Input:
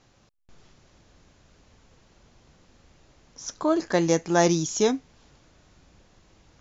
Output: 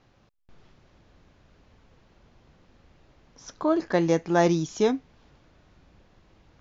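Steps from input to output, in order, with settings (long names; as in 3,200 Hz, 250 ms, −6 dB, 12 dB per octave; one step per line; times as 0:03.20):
high-frequency loss of the air 160 metres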